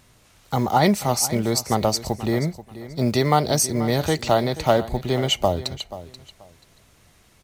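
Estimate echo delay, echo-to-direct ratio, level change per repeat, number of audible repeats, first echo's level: 0.483 s, -15.0 dB, -13.0 dB, 2, -15.0 dB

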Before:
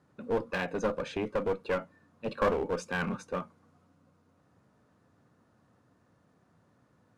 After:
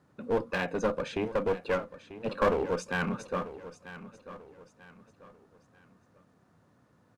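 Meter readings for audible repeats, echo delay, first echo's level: 3, 0.941 s, -14.5 dB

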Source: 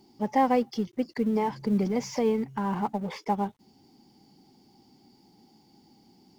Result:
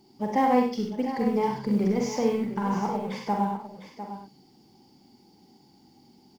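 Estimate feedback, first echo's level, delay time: no steady repeat, -6.0 dB, 44 ms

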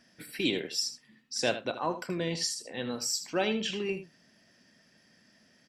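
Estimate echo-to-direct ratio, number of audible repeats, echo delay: -11.5 dB, 1, 78 ms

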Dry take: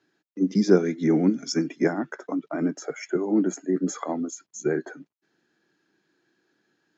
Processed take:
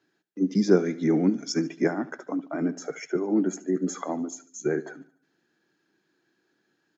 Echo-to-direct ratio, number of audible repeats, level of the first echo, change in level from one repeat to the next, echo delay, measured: -17.5 dB, 3, -18.5 dB, -6.0 dB, 73 ms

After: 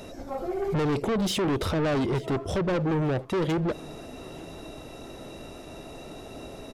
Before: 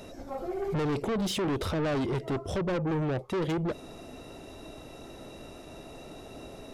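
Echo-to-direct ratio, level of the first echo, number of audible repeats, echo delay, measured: -21.5 dB, -22.0 dB, 2, 0.886 s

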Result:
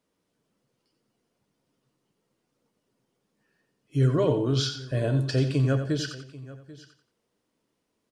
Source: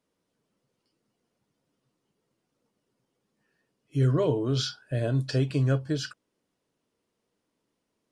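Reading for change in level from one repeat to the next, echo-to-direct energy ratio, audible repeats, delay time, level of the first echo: no steady repeat, -8.5 dB, 5, 89 ms, -9.5 dB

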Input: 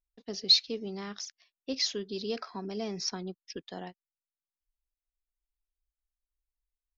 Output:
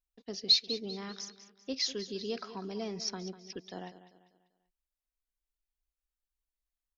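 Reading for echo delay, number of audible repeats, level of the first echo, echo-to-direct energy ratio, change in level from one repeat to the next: 0.196 s, 3, -14.0 dB, -13.0 dB, -8.0 dB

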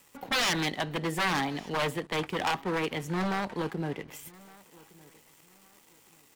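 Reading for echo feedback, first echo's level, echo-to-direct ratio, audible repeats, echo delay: 28%, -23.5 dB, -23.0 dB, 2, 1.164 s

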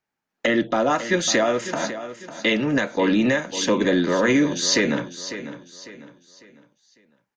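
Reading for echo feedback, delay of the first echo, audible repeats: 36%, 0.55 s, 3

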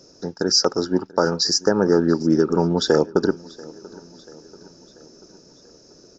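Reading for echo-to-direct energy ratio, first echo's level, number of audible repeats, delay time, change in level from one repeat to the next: -21.0 dB, -22.5 dB, 3, 0.687 s, -5.0 dB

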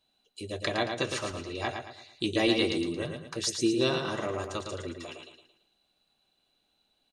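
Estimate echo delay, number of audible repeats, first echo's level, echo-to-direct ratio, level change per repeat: 0.112 s, 4, -6.0 dB, -5.5 dB, -8.0 dB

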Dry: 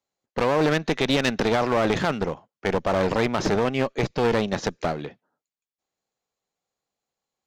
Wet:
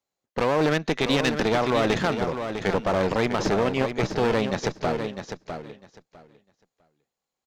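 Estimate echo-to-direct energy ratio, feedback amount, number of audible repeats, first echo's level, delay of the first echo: -8.0 dB, 17%, 2, -8.0 dB, 0.652 s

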